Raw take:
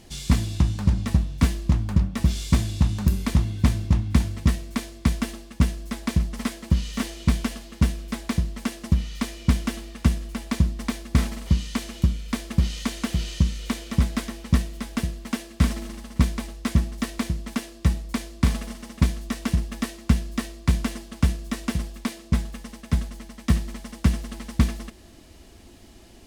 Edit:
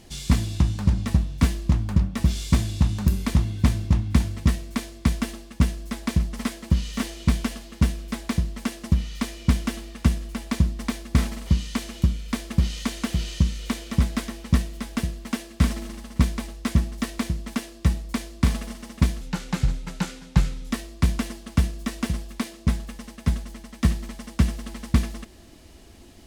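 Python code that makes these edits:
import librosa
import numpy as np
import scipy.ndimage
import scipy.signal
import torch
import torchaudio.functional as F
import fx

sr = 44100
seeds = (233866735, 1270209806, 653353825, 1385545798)

y = fx.edit(x, sr, fx.speed_span(start_s=19.21, length_s=1.16, speed=0.77), tone=tone)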